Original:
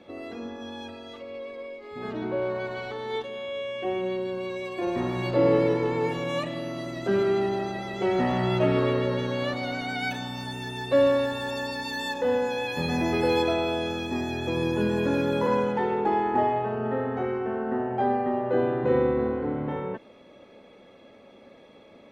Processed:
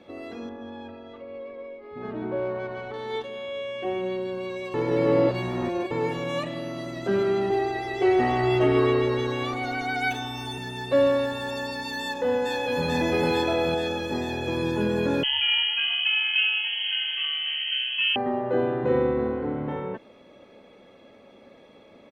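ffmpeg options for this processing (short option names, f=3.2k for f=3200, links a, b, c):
-filter_complex "[0:a]asettb=1/sr,asplit=3[a][b][c];[a]atrim=end=0.494[d];[b]atrim=start=0.49:end=2.94,asetpts=PTS-STARTPTS,afade=t=in:d=0.004:c=qsin,afade=t=out:st=2.446:d=0.004:c=qsin,adynamicsmooth=sensitivity=1.5:basefreq=2.2k[e];[c]atrim=start=2.936[f];[d][e]acrossfade=d=0.004:c1=hsin:c2=qsin[g];[g][f]acrossfade=d=0.004:c1=qsin:c2=hsin,asettb=1/sr,asplit=3[h][i][j];[h]atrim=end=7.504[k];[i]atrim=start=7.5:end=10.58,asetpts=PTS-STARTPTS,afade=t=in:d=0.004:c=qsin,afade=t=out:st=3.076:d=0.004:c=qsin,aecho=1:1:2.6:0.88,atrim=end_sample=135828[l];[j]atrim=start=10.576[m];[k][l]acrossfade=d=0.004:c1=hsin:c2=qsin[n];[n][m]acrossfade=d=0.004:c1=qsin:c2=hsin,asplit=2[o][p];[p]afade=t=in:st=12.01:d=0.01,afade=t=out:st=12.86:d=0.01,aecho=0:1:440|880|1320|1760|2200|2640|3080|3520|3960|4400|4840|5280:0.749894|0.562421|0.421815|0.316362|0.237271|0.177953|0.133465|0.100099|0.0750741|0.0563056|0.0422292|0.0316719[q];[o][q]amix=inputs=2:normalize=0,asettb=1/sr,asplit=3[r][s][t];[r]atrim=end=15.234[u];[s]atrim=start=15.23:end=18.16,asetpts=PTS-STARTPTS,afade=t=in:d=0.004:c=qsin,afade=t=out:st=2.926:d=0.004:c=qsin,lowpass=f=2.9k:t=q:w=0.5098,lowpass=f=2.9k:t=q:w=0.6013,lowpass=f=2.9k:t=q:w=0.9,lowpass=f=2.9k:t=q:w=2.563,afreqshift=-3400[v];[t]atrim=start=18.156[w];[u][v]acrossfade=d=0.004:c1=hsin:c2=qsin[x];[x][w]acrossfade=d=0.004:c1=qsin:c2=hsin,asplit=3[y][z][aa];[y]atrim=end=4.742[ab];[z]atrim=start=4.738:end=5.912,asetpts=PTS-STARTPTS,areverse[ac];[aa]atrim=start=5.908[ad];[ab][ac]acrossfade=d=0.004:c1=hsin:c2=hsin[ae];[ae][ad]acrossfade=d=0.004:c1=hsin:c2=hsin"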